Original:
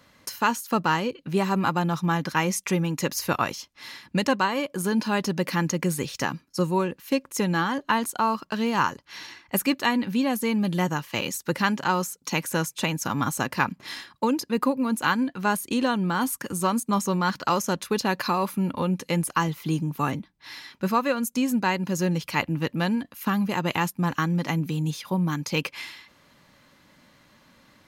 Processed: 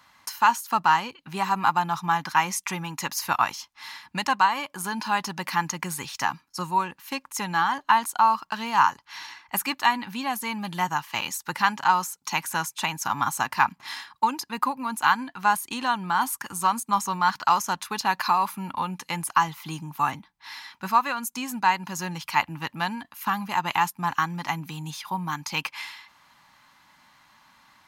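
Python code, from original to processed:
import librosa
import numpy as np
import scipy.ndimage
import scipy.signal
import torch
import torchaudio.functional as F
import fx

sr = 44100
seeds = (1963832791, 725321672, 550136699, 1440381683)

y = fx.low_shelf_res(x, sr, hz=660.0, db=-8.5, q=3.0)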